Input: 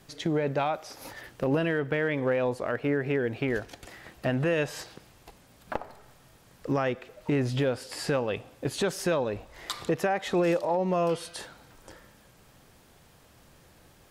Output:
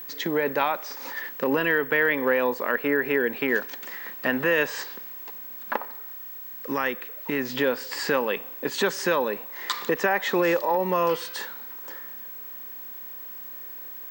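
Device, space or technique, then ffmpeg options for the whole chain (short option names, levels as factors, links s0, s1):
old television with a line whistle: -filter_complex "[0:a]highpass=f=220:w=0.5412,highpass=f=220:w=1.3066,equalizer=f=320:t=q:w=4:g=-5,equalizer=f=680:t=q:w=4:g=-9,equalizer=f=1000:t=q:w=4:g=6,equalizer=f=1800:t=q:w=4:g=7,lowpass=f=7900:w=0.5412,lowpass=f=7900:w=1.3066,aeval=exprs='val(0)+0.00891*sin(2*PI*15734*n/s)':c=same,asettb=1/sr,asplit=3[s0][s1][s2];[s0]atrim=end=5.854[s3];[s1]atrim=start=5.85:end=7.5,asetpts=PTS-STARTPTS,afade=t=in:d=0.004:c=qsin,afade=t=out:st=1.646:d=0.004:c=qsin,equalizer=f=530:w=0.42:g=-4.5[s4];[s2]atrim=start=7.496[s5];[s3][s4]acrossfade=d=0.004:c1=hsin:c2=qsin[s6];[s6][s5]acrossfade=d=0.004:c1=qsin:c2=hsin,volume=1.78"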